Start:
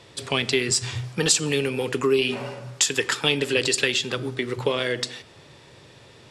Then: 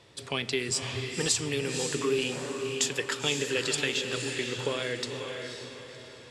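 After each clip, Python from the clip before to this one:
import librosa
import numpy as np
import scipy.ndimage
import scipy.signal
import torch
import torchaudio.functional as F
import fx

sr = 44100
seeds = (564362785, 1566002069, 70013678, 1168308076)

y = fx.echo_diffused(x, sr, ms=526, feedback_pct=42, wet_db=-5)
y = y * 10.0 ** (-7.5 / 20.0)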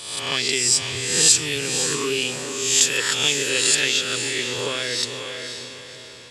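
y = fx.spec_swells(x, sr, rise_s=0.89)
y = fx.high_shelf(y, sr, hz=2200.0, db=10.0)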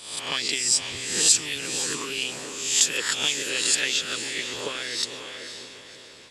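y = fx.hpss(x, sr, part='harmonic', gain_db=-14)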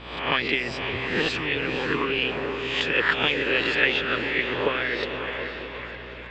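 y = scipy.signal.sosfilt(scipy.signal.butter(4, 2500.0, 'lowpass', fs=sr, output='sos'), x)
y = fx.add_hum(y, sr, base_hz=60, snr_db=19)
y = fx.echo_stepped(y, sr, ms=360, hz=490.0, octaves=0.7, feedback_pct=70, wet_db=-7)
y = y * 10.0 ** (8.5 / 20.0)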